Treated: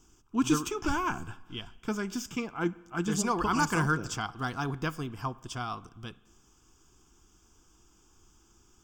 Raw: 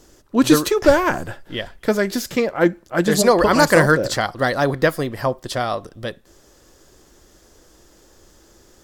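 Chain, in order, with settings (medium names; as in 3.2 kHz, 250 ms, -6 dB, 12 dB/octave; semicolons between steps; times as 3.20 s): static phaser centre 2.8 kHz, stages 8; spring tank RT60 1.2 s, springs 32/57 ms, chirp 35 ms, DRR 19.5 dB; trim -8.5 dB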